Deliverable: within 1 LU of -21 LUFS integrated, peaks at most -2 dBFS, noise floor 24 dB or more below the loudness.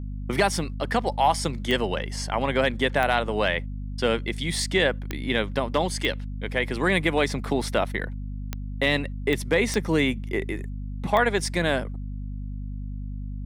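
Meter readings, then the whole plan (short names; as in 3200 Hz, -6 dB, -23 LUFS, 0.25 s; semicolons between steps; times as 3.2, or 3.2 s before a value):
clicks 8; hum 50 Hz; harmonics up to 250 Hz; hum level -30 dBFS; loudness -25.0 LUFS; peak -6.5 dBFS; loudness target -21.0 LUFS
-> de-click; de-hum 50 Hz, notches 5; gain +4 dB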